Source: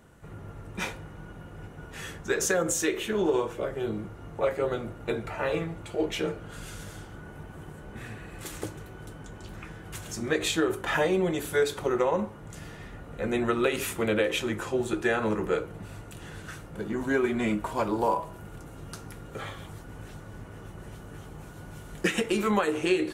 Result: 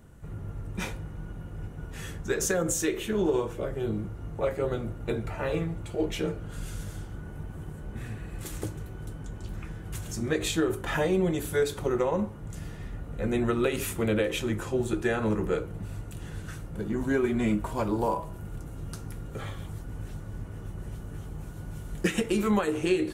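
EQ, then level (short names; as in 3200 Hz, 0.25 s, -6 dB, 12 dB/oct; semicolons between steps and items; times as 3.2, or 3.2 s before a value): low shelf 98 Hz +7 dB; low shelf 370 Hz +7.5 dB; high shelf 5900 Hz +6 dB; -4.5 dB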